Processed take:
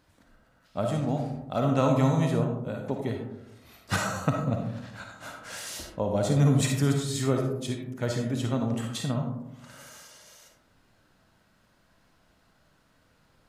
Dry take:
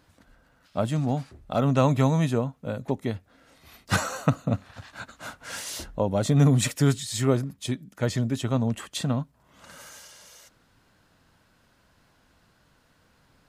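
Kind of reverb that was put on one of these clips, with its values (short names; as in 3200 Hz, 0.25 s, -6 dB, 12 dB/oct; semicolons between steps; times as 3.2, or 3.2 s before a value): digital reverb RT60 0.91 s, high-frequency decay 0.3×, pre-delay 15 ms, DRR 2 dB; gain -4 dB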